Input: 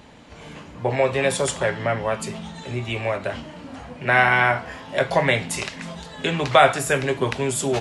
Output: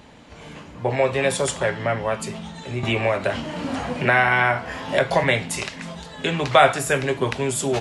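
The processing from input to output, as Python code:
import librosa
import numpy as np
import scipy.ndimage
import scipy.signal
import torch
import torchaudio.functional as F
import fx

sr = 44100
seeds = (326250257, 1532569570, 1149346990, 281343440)

y = fx.band_squash(x, sr, depth_pct=70, at=(2.83, 5.24))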